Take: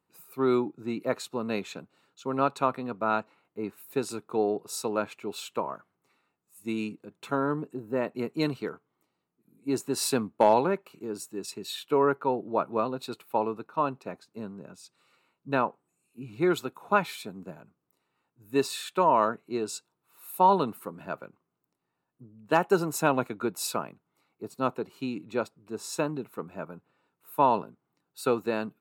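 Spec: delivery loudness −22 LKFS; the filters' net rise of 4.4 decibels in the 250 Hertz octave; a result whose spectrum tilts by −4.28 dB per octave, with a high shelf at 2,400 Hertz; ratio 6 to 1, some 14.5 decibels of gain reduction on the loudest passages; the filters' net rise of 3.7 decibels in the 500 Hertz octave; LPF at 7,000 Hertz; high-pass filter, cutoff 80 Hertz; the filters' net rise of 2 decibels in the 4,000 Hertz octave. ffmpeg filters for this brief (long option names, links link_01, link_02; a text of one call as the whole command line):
ffmpeg -i in.wav -af "highpass=80,lowpass=7000,equalizer=frequency=250:width_type=o:gain=4.5,equalizer=frequency=500:width_type=o:gain=3.5,highshelf=frequency=2400:gain=-4.5,equalizer=frequency=4000:width_type=o:gain=6.5,acompressor=threshold=-29dB:ratio=6,volume=13.5dB" out.wav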